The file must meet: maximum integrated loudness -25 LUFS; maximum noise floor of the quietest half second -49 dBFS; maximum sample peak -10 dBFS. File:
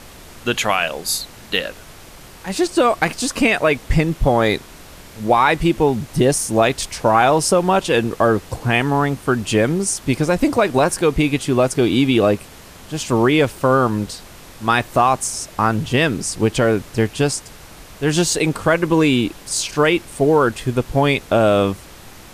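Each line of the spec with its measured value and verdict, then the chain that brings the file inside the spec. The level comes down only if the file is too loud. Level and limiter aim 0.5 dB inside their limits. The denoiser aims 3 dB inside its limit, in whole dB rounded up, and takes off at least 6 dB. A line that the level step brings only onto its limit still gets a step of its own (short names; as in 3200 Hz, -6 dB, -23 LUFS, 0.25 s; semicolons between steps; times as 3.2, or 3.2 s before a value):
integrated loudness -18.0 LUFS: fail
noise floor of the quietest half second -40 dBFS: fail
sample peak -3.5 dBFS: fail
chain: denoiser 6 dB, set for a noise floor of -40 dBFS; gain -7.5 dB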